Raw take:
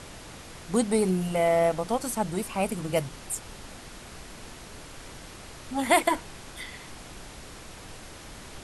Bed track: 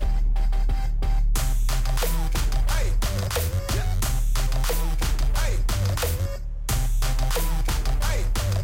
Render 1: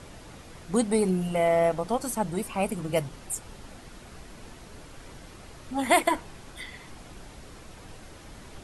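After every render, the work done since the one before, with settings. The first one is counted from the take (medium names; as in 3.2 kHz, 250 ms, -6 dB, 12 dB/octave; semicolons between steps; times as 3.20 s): noise reduction 6 dB, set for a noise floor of -45 dBFS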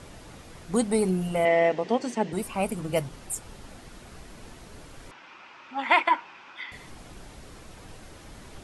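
1.45–2.33 s: cabinet simulation 200–6400 Hz, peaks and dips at 240 Hz +6 dB, 410 Hz +9 dB, 1.3 kHz -7 dB, 1.9 kHz +9 dB, 2.8 kHz +7 dB; 5.11–6.72 s: cabinet simulation 440–4800 Hz, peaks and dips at 450 Hz -9 dB, 650 Hz -6 dB, 950 Hz +7 dB, 1.4 kHz +6 dB, 2.5 kHz +9 dB, 4.2 kHz -6 dB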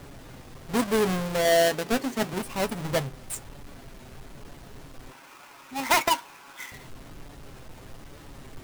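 square wave that keeps the level; flange 1.1 Hz, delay 6.9 ms, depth 1 ms, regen +57%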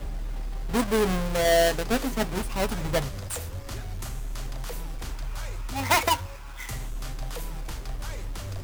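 add bed track -11 dB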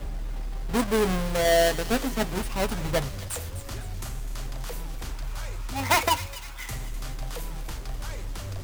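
feedback echo behind a high-pass 254 ms, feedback 47%, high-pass 2.3 kHz, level -12 dB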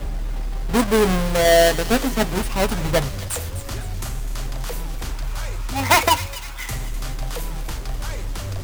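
trim +6.5 dB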